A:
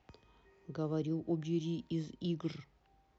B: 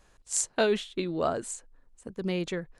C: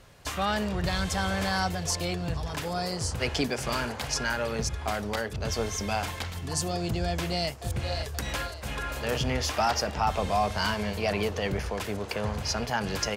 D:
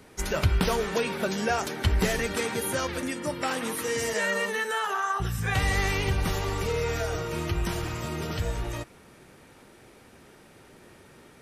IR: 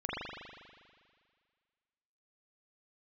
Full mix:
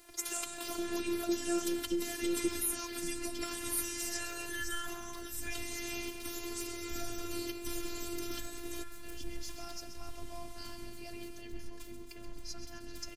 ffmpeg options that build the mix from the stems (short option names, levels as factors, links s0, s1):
-filter_complex "[0:a]aecho=1:1:5.9:0.97,acompressor=threshold=0.0282:ratio=6,volume=1.26,asplit=2[s0][s1];[1:a]acompressor=threshold=0.0316:ratio=6,volume=0.224,asplit=2[s2][s3];[s3]volume=0.355[s4];[2:a]volume=0.112,asplit=2[s5][s6];[s6]volume=0.335[s7];[3:a]acompressor=threshold=0.0355:ratio=6,highpass=300,volume=0.531[s8];[s1]apad=whole_len=580447[s9];[s5][s9]sidechaincompress=threshold=0.00708:ratio=8:attack=16:release=477[s10];[s4][s7]amix=inputs=2:normalize=0,aecho=0:1:131|262|393|524|655|786|917|1048|1179:1|0.58|0.336|0.195|0.113|0.0656|0.0381|0.0221|0.0128[s11];[s0][s2][s10][s8][s11]amix=inputs=5:normalize=0,asubboost=boost=7:cutoff=250,crystalizer=i=2.5:c=0,afftfilt=real='hypot(re,im)*cos(PI*b)':imag='0':win_size=512:overlap=0.75"